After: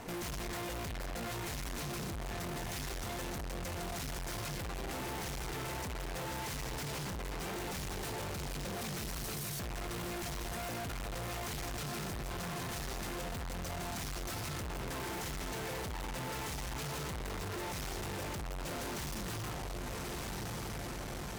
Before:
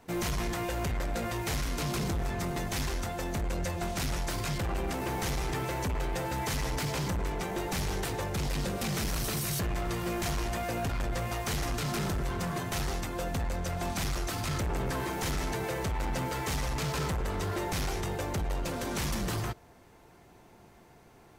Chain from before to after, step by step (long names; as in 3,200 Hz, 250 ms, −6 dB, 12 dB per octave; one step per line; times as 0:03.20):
feedback delay with all-pass diffusion 1,251 ms, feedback 49%, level −11.5 dB
tube saturation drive 53 dB, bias 0.6
level +14 dB